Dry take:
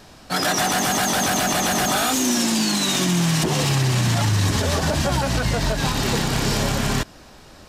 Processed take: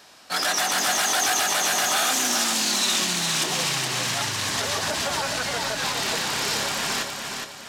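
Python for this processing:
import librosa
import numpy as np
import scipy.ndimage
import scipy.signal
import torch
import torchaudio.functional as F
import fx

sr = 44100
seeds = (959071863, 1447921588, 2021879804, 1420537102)

y = fx.highpass(x, sr, hz=1100.0, slope=6)
y = fx.echo_feedback(y, sr, ms=416, feedback_pct=39, wet_db=-5.0)
y = fx.doppler_dist(y, sr, depth_ms=0.15)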